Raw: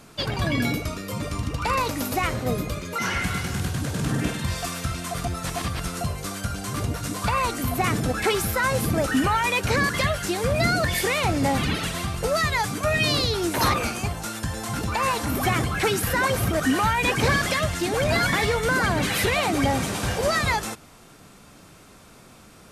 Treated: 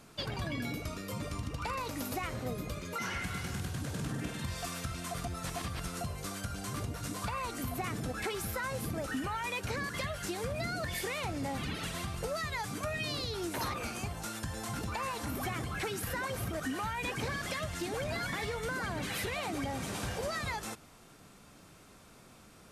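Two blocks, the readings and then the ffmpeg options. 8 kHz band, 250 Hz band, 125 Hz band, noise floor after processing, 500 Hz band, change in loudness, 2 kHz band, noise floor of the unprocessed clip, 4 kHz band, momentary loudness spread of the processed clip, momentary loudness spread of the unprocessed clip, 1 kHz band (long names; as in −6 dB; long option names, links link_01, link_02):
−11.5 dB, −12.5 dB, −12.0 dB, −57 dBFS, −13.0 dB, −12.5 dB, −13.0 dB, −49 dBFS, −12.5 dB, 4 LU, 8 LU, −13.0 dB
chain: -af "acompressor=threshold=-26dB:ratio=4,volume=-7.5dB"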